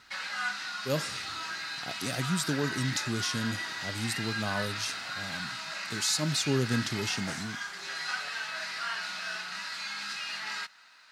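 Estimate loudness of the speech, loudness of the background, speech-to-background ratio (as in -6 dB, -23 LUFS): -32.0 LUFS, -35.0 LUFS, 3.0 dB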